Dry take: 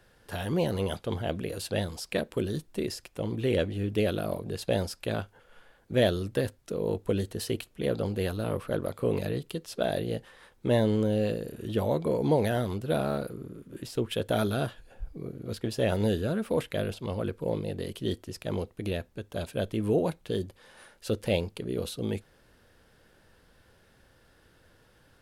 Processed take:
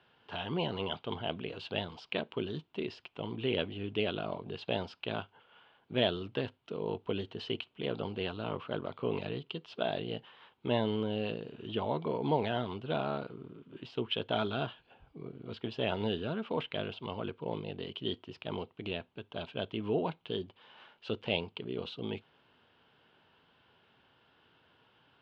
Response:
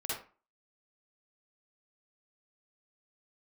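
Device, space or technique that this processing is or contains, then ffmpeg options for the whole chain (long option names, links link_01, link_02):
kitchen radio: -af "highpass=170,equalizer=frequency=200:width_type=q:width=4:gain=-5,equalizer=frequency=320:width_type=q:width=4:gain=-5,equalizer=frequency=530:width_type=q:width=4:gain=-9,equalizer=frequency=950:width_type=q:width=4:gain=4,equalizer=frequency=1800:width_type=q:width=4:gain=-7,equalizer=frequency=3000:width_type=q:width=4:gain=8,lowpass=frequency=3500:width=0.5412,lowpass=frequency=3500:width=1.3066,volume=-1.5dB"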